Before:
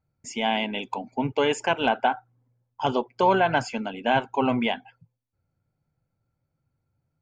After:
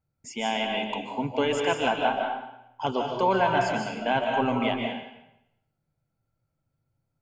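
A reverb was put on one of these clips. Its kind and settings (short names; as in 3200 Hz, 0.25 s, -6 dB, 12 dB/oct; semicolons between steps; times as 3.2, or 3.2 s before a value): digital reverb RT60 0.83 s, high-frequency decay 0.95×, pre-delay 0.105 s, DRR 1 dB; gain -3.5 dB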